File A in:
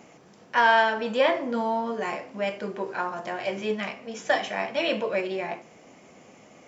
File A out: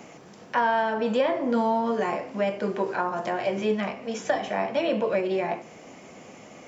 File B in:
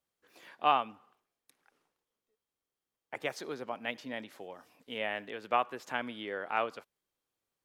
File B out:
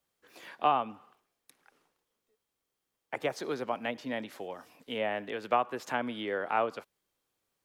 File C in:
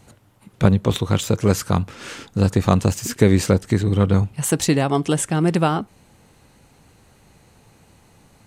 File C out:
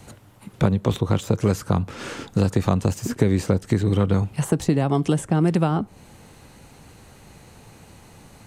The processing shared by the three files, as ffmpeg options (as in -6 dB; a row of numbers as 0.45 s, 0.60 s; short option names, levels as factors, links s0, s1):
-filter_complex "[0:a]acrossover=split=230|1200[s0][s1][s2];[s0]acompressor=threshold=0.0501:ratio=4[s3];[s1]acompressor=threshold=0.0398:ratio=4[s4];[s2]acompressor=threshold=0.00708:ratio=4[s5];[s3][s4][s5]amix=inputs=3:normalize=0,volume=1.88"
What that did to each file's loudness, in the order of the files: 0.0 LU, +1.5 LU, -2.5 LU